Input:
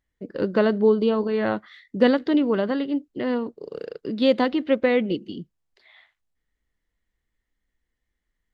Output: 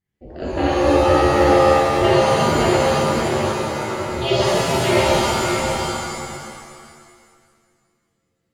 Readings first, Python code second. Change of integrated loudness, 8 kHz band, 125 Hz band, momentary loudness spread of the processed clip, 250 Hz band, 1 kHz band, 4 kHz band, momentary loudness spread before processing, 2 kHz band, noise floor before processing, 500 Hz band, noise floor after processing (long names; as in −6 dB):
+5.0 dB, can't be measured, +14.5 dB, 13 LU, +1.0 dB, +14.5 dB, +11.0 dB, 16 LU, +8.5 dB, −81 dBFS, +5.5 dB, −72 dBFS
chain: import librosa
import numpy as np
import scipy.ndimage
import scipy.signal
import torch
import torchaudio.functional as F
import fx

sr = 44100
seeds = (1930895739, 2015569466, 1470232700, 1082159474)

p1 = x * np.sin(2.0 * np.pi * 140.0 * np.arange(len(x)) / sr)
p2 = p1 + fx.echo_single(p1, sr, ms=575, db=-5.0, dry=0)
p3 = fx.dynamic_eq(p2, sr, hz=2900.0, q=0.89, threshold_db=-46.0, ratio=4.0, max_db=7)
p4 = fx.rev_shimmer(p3, sr, seeds[0], rt60_s=1.9, semitones=7, shimmer_db=-2, drr_db=-7.5)
y = p4 * librosa.db_to_amplitude(-5.5)